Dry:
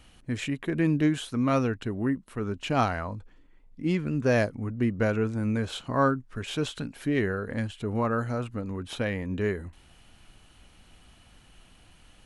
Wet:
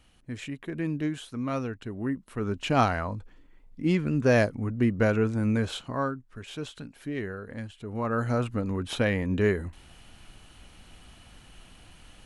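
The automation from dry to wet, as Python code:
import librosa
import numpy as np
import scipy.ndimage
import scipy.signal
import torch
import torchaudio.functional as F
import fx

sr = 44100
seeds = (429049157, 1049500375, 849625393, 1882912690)

y = fx.gain(x, sr, db=fx.line((1.81, -6.0), (2.53, 2.0), (5.68, 2.0), (6.08, -7.0), (7.88, -7.0), (8.32, 4.0)))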